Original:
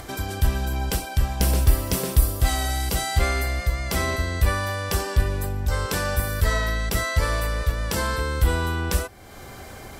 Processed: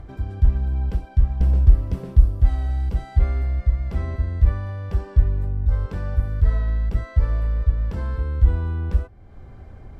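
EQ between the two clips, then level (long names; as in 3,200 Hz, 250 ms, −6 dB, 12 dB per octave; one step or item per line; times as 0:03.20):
RIAA equalisation playback
high-shelf EQ 3,900 Hz −9.5 dB
−11.5 dB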